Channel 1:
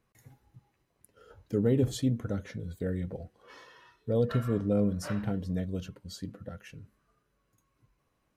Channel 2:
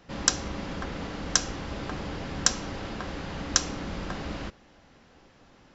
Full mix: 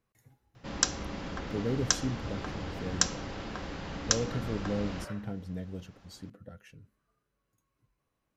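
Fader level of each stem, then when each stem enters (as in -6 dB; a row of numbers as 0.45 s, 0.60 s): -6.0 dB, -3.5 dB; 0.00 s, 0.55 s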